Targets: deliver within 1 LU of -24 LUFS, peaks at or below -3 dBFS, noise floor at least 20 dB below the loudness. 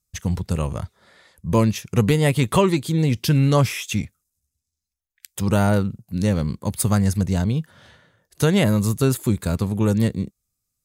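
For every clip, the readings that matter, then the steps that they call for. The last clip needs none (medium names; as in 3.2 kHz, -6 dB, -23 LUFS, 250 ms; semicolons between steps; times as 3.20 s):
loudness -21.0 LUFS; peak level -5.0 dBFS; loudness target -24.0 LUFS
-> trim -3 dB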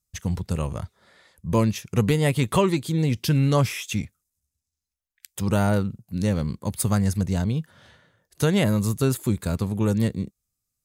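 loudness -24.0 LUFS; peak level -8.0 dBFS; noise floor -84 dBFS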